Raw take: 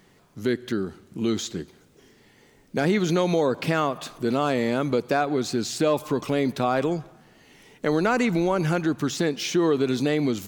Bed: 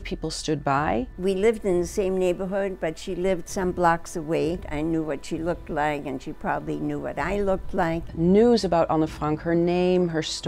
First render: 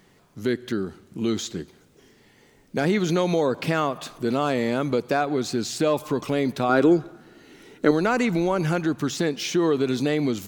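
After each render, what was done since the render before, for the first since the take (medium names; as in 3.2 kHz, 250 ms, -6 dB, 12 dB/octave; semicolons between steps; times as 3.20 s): 6.69–7.91 s: small resonant body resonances 330/1400/3900 Hz, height 11 dB, ringing for 20 ms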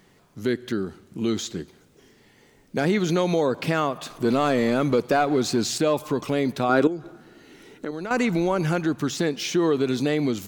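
4.10–5.78 s: waveshaping leveller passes 1; 6.87–8.11 s: compression 2.5:1, threshold -33 dBFS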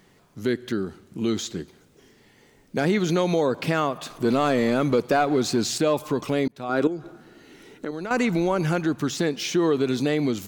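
6.48–6.94 s: fade in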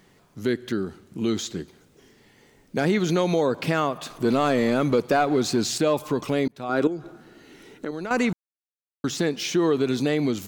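8.33–9.04 s: mute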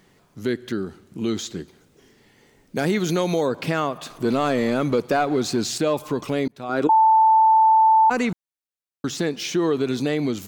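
2.76–3.49 s: treble shelf 9.1 kHz +11.5 dB; 6.89–8.10 s: bleep 883 Hz -11.5 dBFS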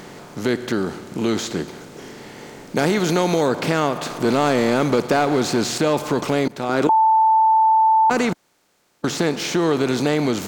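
spectral levelling over time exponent 0.6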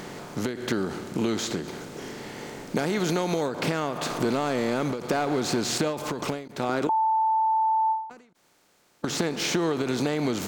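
compression, threshold -22 dBFS, peak gain reduction 9 dB; endings held to a fixed fall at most 100 dB/s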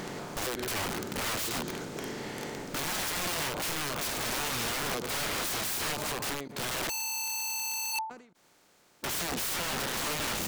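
integer overflow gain 27.5 dB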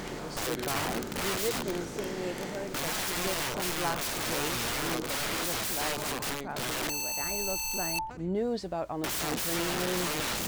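add bed -13 dB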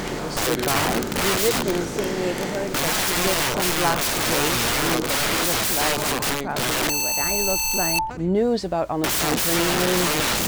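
trim +10 dB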